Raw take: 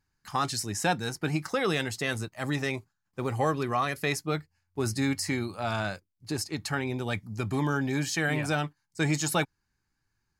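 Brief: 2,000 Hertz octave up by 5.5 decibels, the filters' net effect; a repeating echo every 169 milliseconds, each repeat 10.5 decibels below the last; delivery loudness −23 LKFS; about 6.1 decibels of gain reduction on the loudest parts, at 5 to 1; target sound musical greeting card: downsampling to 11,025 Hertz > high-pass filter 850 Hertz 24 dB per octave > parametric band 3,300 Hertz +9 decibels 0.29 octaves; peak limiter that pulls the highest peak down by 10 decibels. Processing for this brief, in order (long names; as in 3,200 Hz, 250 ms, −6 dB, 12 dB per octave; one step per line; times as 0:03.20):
parametric band 2,000 Hz +6.5 dB
downward compressor 5 to 1, threshold −27 dBFS
brickwall limiter −24 dBFS
repeating echo 169 ms, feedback 30%, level −10.5 dB
downsampling to 11,025 Hz
high-pass filter 850 Hz 24 dB per octave
parametric band 3,300 Hz +9 dB 0.29 octaves
level +14.5 dB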